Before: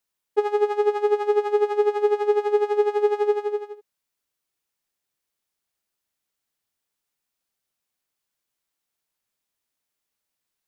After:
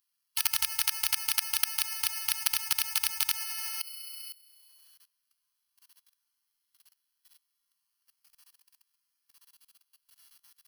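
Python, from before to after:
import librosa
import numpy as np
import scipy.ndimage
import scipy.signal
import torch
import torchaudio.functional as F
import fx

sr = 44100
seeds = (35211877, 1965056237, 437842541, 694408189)

p1 = fx.freq_invert(x, sr, carrier_hz=3400)
p2 = fx.tilt_shelf(p1, sr, db=-8.5, hz=900.0)
p3 = fx.resonator_bank(p2, sr, root=46, chord='major', decay_s=0.27)
p4 = p3 + fx.room_flutter(p3, sr, wall_m=11.3, rt60_s=1.4, dry=0)
p5 = (np.kron(p4[::6], np.eye(6)[0]) * 6)[:len(p4)]
p6 = scipy.signal.sosfilt(scipy.signal.cheby1(3, 1.0, [290.0, 900.0], 'bandstop', fs=sr, output='sos'), p5)
p7 = fx.level_steps(p6, sr, step_db=22)
p8 = fx.peak_eq(p7, sr, hz=2200.0, db=-8.0, octaves=0.82)
p9 = fx.spectral_comp(p8, sr, ratio=10.0)
y = p9 * 10.0 ** (7.0 / 20.0)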